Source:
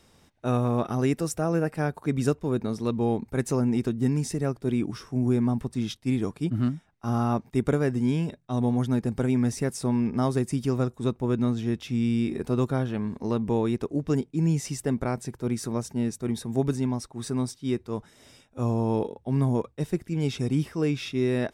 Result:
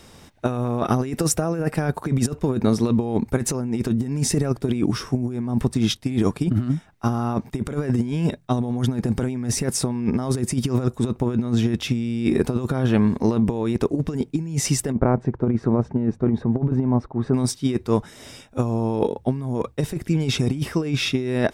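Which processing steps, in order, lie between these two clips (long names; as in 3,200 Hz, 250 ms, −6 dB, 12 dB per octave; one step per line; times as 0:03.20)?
0:14.92–0:17.34: low-pass filter 1,200 Hz 12 dB per octave
compressor whose output falls as the input rises −28 dBFS, ratio −0.5
level +8 dB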